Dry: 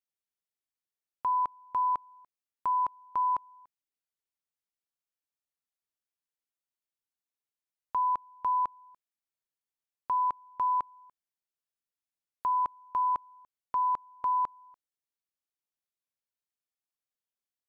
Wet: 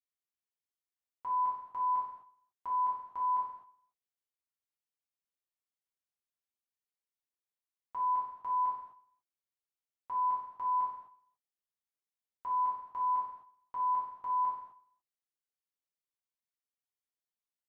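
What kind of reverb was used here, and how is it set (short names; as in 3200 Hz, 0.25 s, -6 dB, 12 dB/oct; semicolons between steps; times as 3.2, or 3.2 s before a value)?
non-linear reverb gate 0.29 s falling, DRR -7 dB; gain -13.5 dB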